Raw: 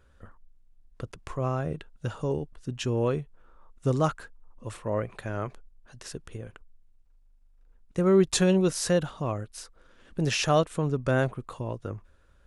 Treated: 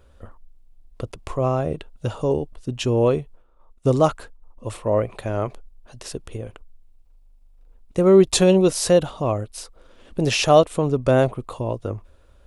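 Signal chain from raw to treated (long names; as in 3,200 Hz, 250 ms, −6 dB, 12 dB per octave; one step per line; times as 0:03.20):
0:02.34–0:04.76: downward expander −44 dBFS
graphic EQ with 15 bands 160 Hz −5 dB, 630 Hz +3 dB, 1,600 Hz −8 dB, 6,300 Hz −3 dB
level +8 dB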